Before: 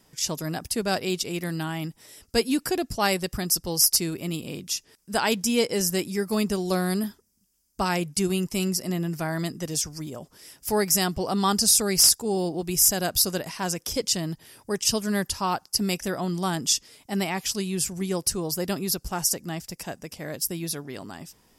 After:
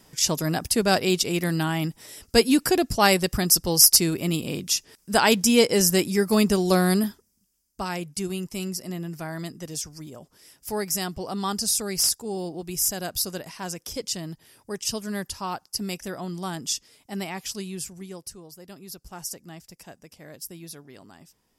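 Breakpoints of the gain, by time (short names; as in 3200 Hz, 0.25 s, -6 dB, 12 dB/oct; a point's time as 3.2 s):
6.92 s +5 dB
7.81 s -5 dB
17.66 s -5 dB
18.57 s -18 dB
19.2 s -10 dB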